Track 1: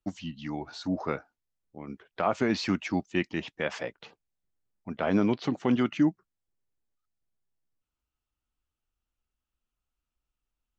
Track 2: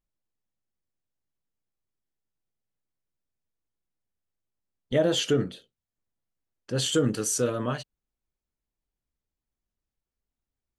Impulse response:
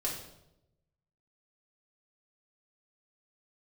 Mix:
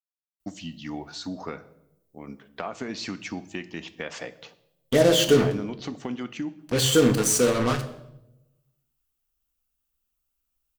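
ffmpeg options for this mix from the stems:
-filter_complex "[0:a]aemphasis=mode=production:type=50fm,acompressor=threshold=-30dB:ratio=6,adelay=400,volume=-1dB,asplit=2[a][b];[b]volume=-13dB[c];[1:a]acrusher=bits=4:mix=0:aa=0.5,volume=1.5dB,asplit=2[d][e];[e]volume=-6.5dB[f];[2:a]atrim=start_sample=2205[g];[c][f]amix=inputs=2:normalize=0[h];[h][g]afir=irnorm=-1:irlink=0[i];[a][d][i]amix=inputs=3:normalize=0"

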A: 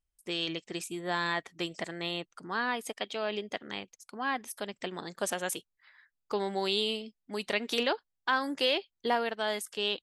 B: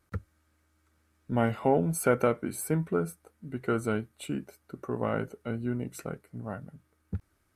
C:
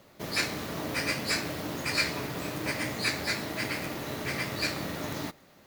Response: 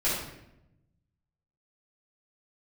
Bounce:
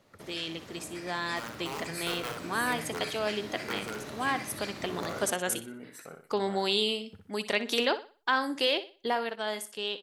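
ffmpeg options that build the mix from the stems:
-filter_complex "[0:a]highshelf=f=8.5k:g=4,volume=-3.5dB,asplit=2[a][b];[b]volume=-14dB[c];[1:a]aeval=exprs='(mod(7.08*val(0)+1,2)-1)/7.08':c=same,highpass=f=590:p=1,asoftclip=type=tanh:threshold=-23.5dB,volume=-10.5dB,asplit=2[d][e];[e]volume=-5.5dB[f];[2:a]lowpass=11k,acompressor=threshold=-39dB:ratio=3,volume=-7.5dB,asplit=2[g][h];[h]volume=-7.5dB[i];[c][f][i]amix=inputs=3:normalize=0,aecho=0:1:61|122|183|244|305:1|0.32|0.102|0.0328|0.0105[j];[a][d][g][j]amix=inputs=4:normalize=0,dynaudnorm=f=440:g=9:m=5.5dB"

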